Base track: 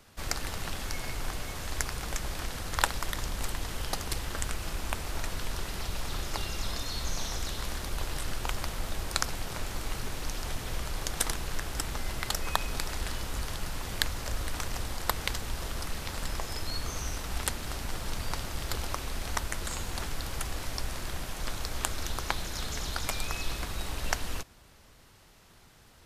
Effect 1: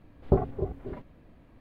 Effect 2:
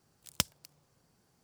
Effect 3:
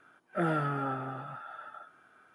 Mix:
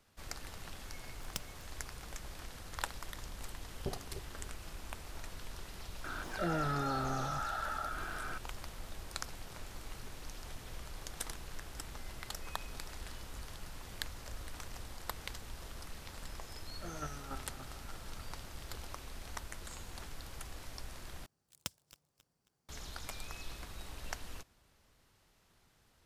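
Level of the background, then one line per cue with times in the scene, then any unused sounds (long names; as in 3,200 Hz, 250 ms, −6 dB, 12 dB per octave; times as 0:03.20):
base track −12 dB
0:00.96: mix in 2 −12 dB + log-companded quantiser 6 bits
0:03.54: mix in 1 −15 dB + output level in coarse steps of 10 dB
0:06.04: mix in 3 −6 dB + envelope flattener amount 70%
0:16.45: mix in 3 −9 dB + square-wave tremolo 3.5 Hz, depth 65%, duty 15%
0:21.26: overwrite with 2 −12 dB + feedback delay that plays each chunk backwards 135 ms, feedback 60%, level −14 dB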